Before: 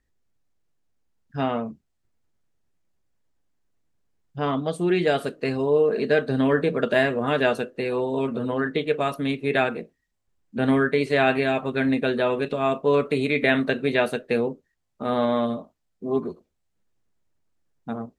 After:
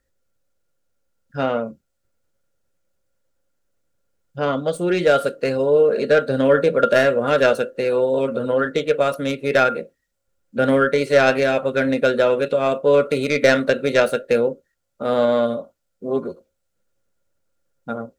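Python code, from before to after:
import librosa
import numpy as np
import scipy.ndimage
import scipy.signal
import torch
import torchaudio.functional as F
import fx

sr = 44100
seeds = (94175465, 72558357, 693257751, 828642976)

y = fx.tracing_dist(x, sr, depth_ms=0.056)
y = fx.high_shelf(y, sr, hz=4400.0, db=8.0)
y = fx.small_body(y, sr, hz=(540.0, 1400.0), ring_ms=65, db=17)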